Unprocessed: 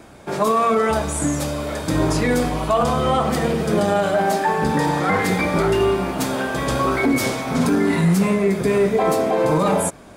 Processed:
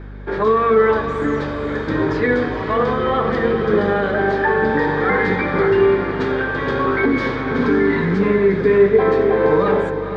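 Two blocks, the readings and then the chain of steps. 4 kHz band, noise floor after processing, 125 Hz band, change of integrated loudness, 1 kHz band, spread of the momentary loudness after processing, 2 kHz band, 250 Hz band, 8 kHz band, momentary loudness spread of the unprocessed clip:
-5.0 dB, -24 dBFS, -2.0 dB, +2.0 dB, -0.5 dB, 6 LU, +5.0 dB, +0.5 dB, under -20 dB, 5 LU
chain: speaker cabinet 110–3600 Hz, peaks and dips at 160 Hz -5 dB, 430 Hz +8 dB, 670 Hz -9 dB, 1700 Hz +9 dB, 2700 Hz -7 dB; hum 50 Hz, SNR 16 dB; diffused feedback echo 0.476 s, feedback 41%, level -9 dB

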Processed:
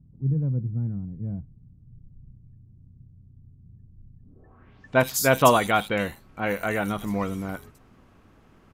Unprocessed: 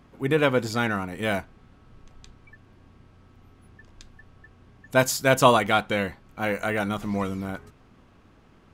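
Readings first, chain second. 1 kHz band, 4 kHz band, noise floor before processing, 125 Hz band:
-0.5 dB, -3.0 dB, -56 dBFS, +3.5 dB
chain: bands offset in time lows, highs 80 ms, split 3800 Hz; low-pass sweep 140 Hz -> 14000 Hz, 4.19–4.99

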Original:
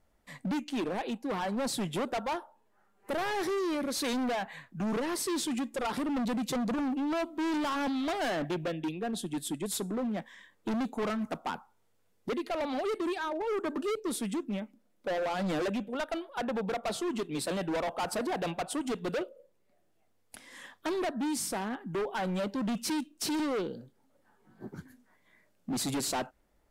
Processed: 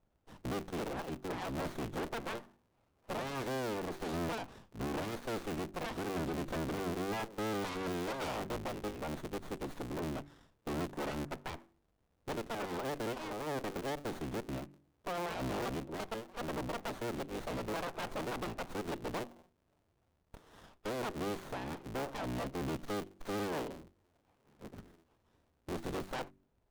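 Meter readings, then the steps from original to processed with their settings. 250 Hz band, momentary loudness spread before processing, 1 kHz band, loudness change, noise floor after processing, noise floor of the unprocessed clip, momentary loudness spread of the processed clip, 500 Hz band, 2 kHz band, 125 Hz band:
-8.0 dB, 8 LU, -5.5 dB, -6.5 dB, -76 dBFS, -70 dBFS, 8 LU, -5.5 dB, -5.0 dB, -1.0 dB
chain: cycle switcher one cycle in 3, inverted; de-hum 47.85 Hz, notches 8; running maximum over 17 samples; gain -5 dB

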